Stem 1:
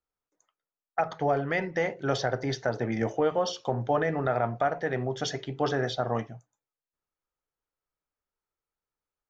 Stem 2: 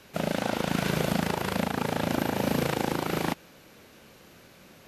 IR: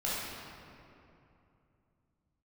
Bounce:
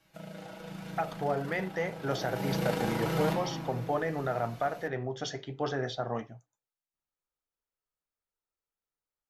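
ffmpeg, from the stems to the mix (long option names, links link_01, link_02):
-filter_complex "[0:a]volume=-0.5dB[link_01];[1:a]aecho=1:1:6.2:0.84,acompressor=threshold=-29dB:ratio=2,volume=-3dB,afade=type=in:start_time=2:duration=0.7:silence=0.223872,asplit=2[link_02][link_03];[link_03]volume=-4.5dB[link_04];[2:a]atrim=start_sample=2205[link_05];[link_04][link_05]afir=irnorm=-1:irlink=0[link_06];[link_01][link_02][link_06]amix=inputs=3:normalize=0,flanger=delay=1:depth=9.5:regen=-73:speed=0.29:shape=sinusoidal"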